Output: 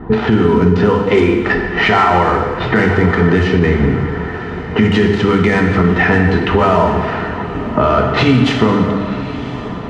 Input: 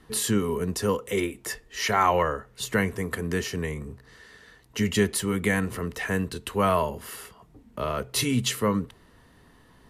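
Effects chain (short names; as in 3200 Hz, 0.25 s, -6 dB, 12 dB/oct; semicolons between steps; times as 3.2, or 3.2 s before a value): switching dead time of 0.06 ms; low-pass opened by the level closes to 1000 Hz, open at -20.5 dBFS; high shelf 4800 Hz -12 dB; notches 50/100/150/200/250/300/350/400/450/500 Hz; compressor 6:1, threshold -38 dBFS, peak gain reduction 19 dB; air absorption 96 m; notch comb 550 Hz; diffused feedback echo 1.031 s, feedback 57%, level -15 dB; plate-style reverb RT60 1.7 s, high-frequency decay 0.8×, DRR 2 dB; maximiser +30.5 dB; gain -1 dB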